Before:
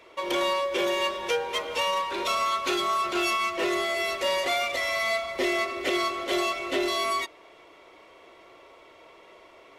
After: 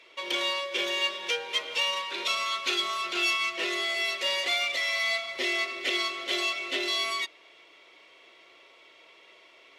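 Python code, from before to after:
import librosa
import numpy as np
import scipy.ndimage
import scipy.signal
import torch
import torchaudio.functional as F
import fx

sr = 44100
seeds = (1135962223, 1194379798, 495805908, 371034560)

y = fx.weighting(x, sr, curve='D')
y = F.gain(torch.from_numpy(y), -8.0).numpy()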